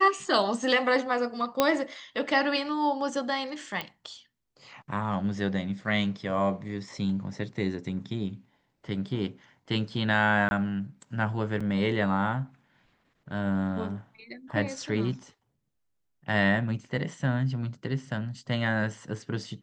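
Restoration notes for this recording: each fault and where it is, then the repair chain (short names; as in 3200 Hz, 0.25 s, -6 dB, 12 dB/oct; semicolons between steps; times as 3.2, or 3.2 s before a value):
1.6 pop -7 dBFS
3.81 pop -18 dBFS
10.49–10.51 gap 21 ms
11.6–11.61 gap 5.6 ms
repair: de-click; interpolate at 10.49, 21 ms; interpolate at 11.6, 5.6 ms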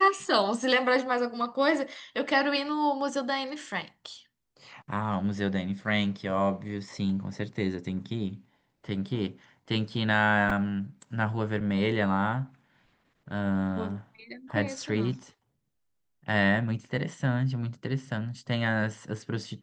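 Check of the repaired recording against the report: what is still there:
3.81 pop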